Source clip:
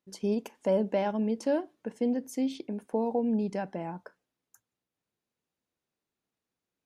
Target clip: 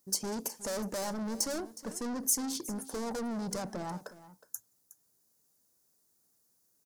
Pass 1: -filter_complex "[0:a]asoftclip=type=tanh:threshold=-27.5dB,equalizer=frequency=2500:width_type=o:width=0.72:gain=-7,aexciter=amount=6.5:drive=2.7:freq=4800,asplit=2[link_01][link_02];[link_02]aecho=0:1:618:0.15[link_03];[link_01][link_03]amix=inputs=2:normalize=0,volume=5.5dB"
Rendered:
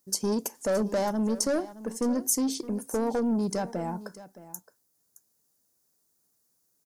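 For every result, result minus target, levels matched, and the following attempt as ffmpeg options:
echo 253 ms late; soft clipping: distortion −7 dB
-filter_complex "[0:a]asoftclip=type=tanh:threshold=-27.5dB,equalizer=frequency=2500:width_type=o:width=0.72:gain=-7,aexciter=amount=6.5:drive=2.7:freq=4800,asplit=2[link_01][link_02];[link_02]aecho=0:1:365:0.15[link_03];[link_01][link_03]amix=inputs=2:normalize=0,volume=5.5dB"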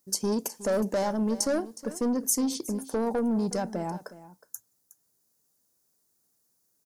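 soft clipping: distortion −7 dB
-filter_complex "[0:a]asoftclip=type=tanh:threshold=-39.5dB,equalizer=frequency=2500:width_type=o:width=0.72:gain=-7,aexciter=amount=6.5:drive=2.7:freq=4800,asplit=2[link_01][link_02];[link_02]aecho=0:1:365:0.15[link_03];[link_01][link_03]amix=inputs=2:normalize=0,volume=5.5dB"

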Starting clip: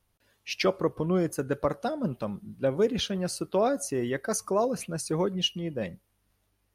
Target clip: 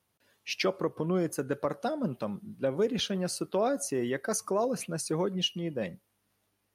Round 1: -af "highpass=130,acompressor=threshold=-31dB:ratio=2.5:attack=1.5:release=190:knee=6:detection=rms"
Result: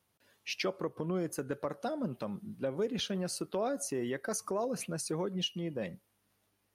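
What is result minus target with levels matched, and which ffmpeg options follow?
downward compressor: peak gain reduction +5.5 dB
-af "highpass=130,acompressor=threshold=-21.5dB:ratio=2.5:attack=1.5:release=190:knee=6:detection=rms"

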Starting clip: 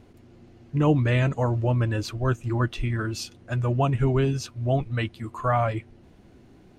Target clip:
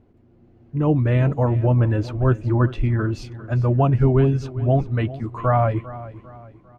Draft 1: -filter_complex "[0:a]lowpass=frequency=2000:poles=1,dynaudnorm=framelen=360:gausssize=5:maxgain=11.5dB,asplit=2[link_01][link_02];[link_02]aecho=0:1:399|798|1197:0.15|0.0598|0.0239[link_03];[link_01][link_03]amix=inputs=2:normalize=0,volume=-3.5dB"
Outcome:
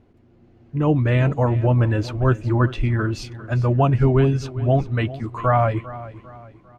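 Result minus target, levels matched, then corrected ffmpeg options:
2,000 Hz band +4.0 dB
-filter_complex "[0:a]lowpass=frequency=880:poles=1,dynaudnorm=framelen=360:gausssize=5:maxgain=11.5dB,asplit=2[link_01][link_02];[link_02]aecho=0:1:399|798|1197:0.15|0.0598|0.0239[link_03];[link_01][link_03]amix=inputs=2:normalize=0,volume=-3.5dB"

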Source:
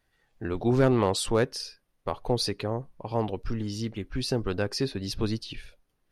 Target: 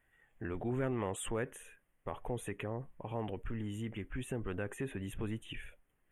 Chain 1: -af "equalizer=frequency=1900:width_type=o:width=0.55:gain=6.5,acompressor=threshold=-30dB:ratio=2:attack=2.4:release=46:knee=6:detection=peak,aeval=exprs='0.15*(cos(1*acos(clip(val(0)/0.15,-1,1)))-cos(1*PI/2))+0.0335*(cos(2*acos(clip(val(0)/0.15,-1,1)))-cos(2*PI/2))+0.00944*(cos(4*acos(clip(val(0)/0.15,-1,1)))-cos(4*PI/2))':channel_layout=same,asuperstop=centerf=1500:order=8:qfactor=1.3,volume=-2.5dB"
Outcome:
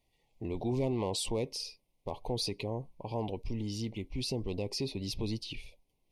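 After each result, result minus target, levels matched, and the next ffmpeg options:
4,000 Hz band +10.0 dB; downward compressor: peak gain reduction −4 dB
-af "equalizer=frequency=1900:width_type=o:width=0.55:gain=6.5,acompressor=threshold=-30dB:ratio=2:attack=2.4:release=46:knee=6:detection=peak,aeval=exprs='0.15*(cos(1*acos(clip(val(0)/0.15,-1,1)))-cos(1*PI/2))+0.0335*(cos(2*acos(clip(val(0)/0.15,-1,1)))-cos(2*PI/2))+0.00944*(cos(4*acos(clip(val(0)/0.15,-1,1)))-cos(4*PI/2))':channel_layout=same,asuperstop=centerf=4800:order=8:qfactor=1.3,volume=-2.5dB"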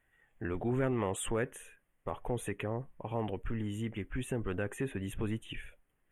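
downward compressor: peak gain reduction −4 dB
-af "equalizer=frequency=1900:width_type=o:width=0.55:gain=6.5,acompressor=threshold=-37.5dB:ratio=2:attack=2.4:release=46:knee=6:detection=peak,aeval=exprs='0.15*(cos(1*acos(clip(val(0)/0.15,-1,1)))-cos(1*PI/2))+0.0335*(cos(2*acos(clip(val(0)/0.15,-1,1)))-cos(2*PI/2))+0.00944*(cos(4*acos(clip(val(0)/0.15,-1,1)))-cos(4*PI/2))':channel_layout=same,asuperstop=centerf=4800:order=8:qfactor=1.3,volume=-2.5dB"

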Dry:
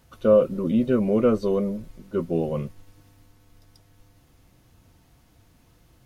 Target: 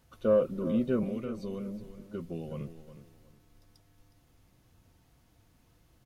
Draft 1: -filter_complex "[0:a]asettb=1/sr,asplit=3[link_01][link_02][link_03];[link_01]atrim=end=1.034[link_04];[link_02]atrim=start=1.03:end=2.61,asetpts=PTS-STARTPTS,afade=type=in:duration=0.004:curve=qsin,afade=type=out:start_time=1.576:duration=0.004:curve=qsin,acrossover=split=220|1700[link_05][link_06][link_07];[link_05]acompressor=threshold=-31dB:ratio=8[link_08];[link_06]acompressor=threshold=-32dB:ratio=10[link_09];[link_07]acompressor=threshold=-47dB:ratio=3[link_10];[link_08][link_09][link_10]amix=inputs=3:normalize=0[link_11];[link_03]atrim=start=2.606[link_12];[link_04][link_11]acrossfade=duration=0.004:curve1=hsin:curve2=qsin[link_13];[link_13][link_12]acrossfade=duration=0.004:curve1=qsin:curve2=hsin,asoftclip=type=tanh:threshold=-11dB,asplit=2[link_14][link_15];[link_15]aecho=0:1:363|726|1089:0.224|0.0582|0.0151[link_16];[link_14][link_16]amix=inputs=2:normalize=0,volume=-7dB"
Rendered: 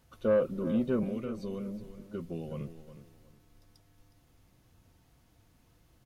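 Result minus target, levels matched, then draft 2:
soft clipping: distortion +11 dB
-filter_complex "[0:a]asettb=1/sr,asplit=3[link_01][link_02][link_03];[link_01]atrim=end=1.034[link_04];[link_02]atrim=start=1.03:end=2.61,asetpts=PTS-STARTPTS,afade=type=in:duration=0.004:curve=qsin,afade=type=out:start_time=1.576:duration=0.004:curve=qsin,acrossover=split=220|1700[link_05][link_06][link_07];[link_05]acompressor=threshold=-31dB:ratio=8[link_08];[link_06]acompressor=threshold=-32dB:ratio=10[link_09];[link_07]acompressor=threshold=-47dB:ratio=3[link_10];[link_08][link_09][link_10]amix=inputs=3:normalize=0[link_11];[link_03]atrim=start=2.606[link_12];[link_04][link_11]acrossfade=duration=0.004:curve1=hsin:curve2=qsin[link_13];[link_13][link_12]acrossfade=duration=0.004:curve1=qsin:curve2=hsin,asoftclip=type=tanh:threshold=-4.5dB,asplit=2[link_14][link_15];[link_15]aecho=0:1:363|726|1089:0.224|0.0582|0.0151[link_16];[link_14][link_16]amix=inputs=2:normalize=0,volume=-7dB"

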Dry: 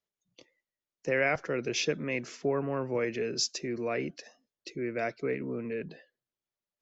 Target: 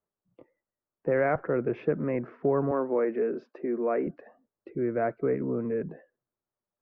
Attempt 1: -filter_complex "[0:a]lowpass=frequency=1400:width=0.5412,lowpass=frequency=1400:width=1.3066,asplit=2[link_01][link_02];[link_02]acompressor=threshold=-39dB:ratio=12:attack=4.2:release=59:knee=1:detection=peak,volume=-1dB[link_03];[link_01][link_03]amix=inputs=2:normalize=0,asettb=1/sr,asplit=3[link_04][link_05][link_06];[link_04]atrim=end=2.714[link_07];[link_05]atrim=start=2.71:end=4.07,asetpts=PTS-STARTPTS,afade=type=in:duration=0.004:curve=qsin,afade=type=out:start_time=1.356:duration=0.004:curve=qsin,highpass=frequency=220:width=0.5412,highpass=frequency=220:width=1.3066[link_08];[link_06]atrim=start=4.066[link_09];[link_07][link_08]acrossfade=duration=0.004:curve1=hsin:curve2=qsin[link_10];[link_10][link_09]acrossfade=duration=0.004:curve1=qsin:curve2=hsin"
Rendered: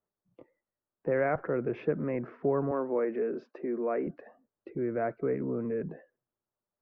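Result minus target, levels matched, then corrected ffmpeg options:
downward compressor: peak gain reduction +10.5 dB
-filter_complex "[0:a]lowpass=frequency=1400:width=0.5412,lowpass=frequency=1400:width=1.3066,asplit=2[link_01][link_02];[link_02]acompressor=threshold=-27.5dB:ratio=12:attack=4.2:release=59:knee=1:detection=peak,volume=-1dB[link_03];[link_01][link_03]amix=inputs=2:normalize=0,asettb=1/sr,asplit=3[link_04][link_05][link_06];[link_04]atrim=end=2.714[link_07];[link_05]atrim=start=2.71:end=4.07,asetpts=PTS-STARTPTS,afade=type=in:duration=0.004:curve=qsin,afade=type=out:start_time=1.356:duration=0.004:curve=qsin,highpass=frequency=220:width=0.5412,highpass=frequency=220:width=1.3066[link_08];[link_06]atrim=start=4.066[link_09];[link_07][link_08]acrossfade=duration=0.004:curve1=hsin:curve2=qsin[link_10];[link_10][link_09]acrossfade=duration=0.004:curve1=qsin:curve2=hsin"

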